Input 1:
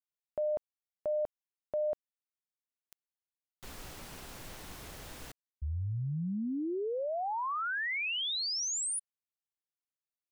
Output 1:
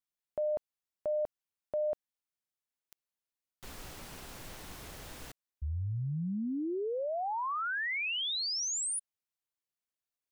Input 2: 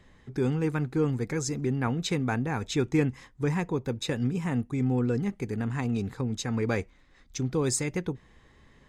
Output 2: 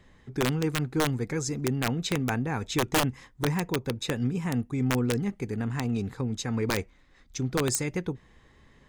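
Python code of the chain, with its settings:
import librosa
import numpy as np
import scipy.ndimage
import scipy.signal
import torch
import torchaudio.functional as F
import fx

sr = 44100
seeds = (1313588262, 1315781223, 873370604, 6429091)

y = (np.mod(10.0 ** (17.5 / 20.0) * x + 1.0, 2.0) - 1.0) / 10.0 ** (17.5 / 20.0)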